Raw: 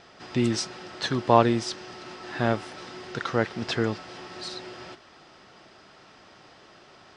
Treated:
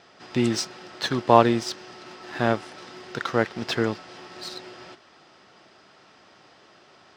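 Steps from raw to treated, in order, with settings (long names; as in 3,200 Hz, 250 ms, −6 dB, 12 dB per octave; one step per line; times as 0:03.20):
high-pass filter 120 Hz 6 dB per octave
in parallel at −3 dB: dead-zone distortion −35 dBFS
on the sum: level −1.5 dB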